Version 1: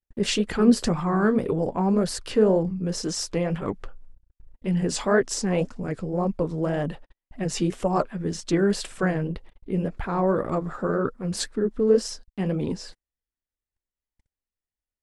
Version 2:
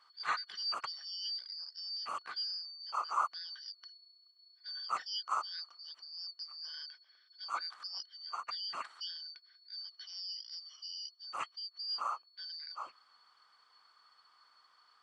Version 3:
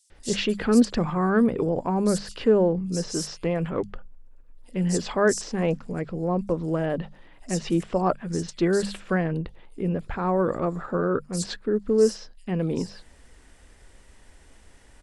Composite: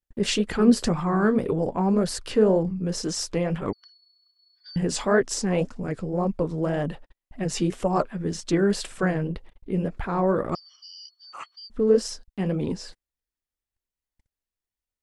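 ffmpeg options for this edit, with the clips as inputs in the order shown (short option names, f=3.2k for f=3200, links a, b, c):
-filter_complex "[1:a]asplit=2[a][b];[0:a]asplit=3[c][d][e];[c]atrim=end=3.732[f];[a]atrim=start=3.728:end=4.762[g];[d]atrim=start=4.758:end=10.552[h];[b]atrim=start=10.548:end=11.702[i];[e]atrim=start=11.698[j];[f][g]acrossfade=d=0.004:c1=hsin:c2=hsin[k];[k][h]acrossfade=d=0.004:c1=hsin:c2=hsin[l];[l][i]acrossfade=d=0.004:c1=hsin:c2=hsin[m];[m][j]acrossfade=d=0.004:c1=hsin:c2=hsin"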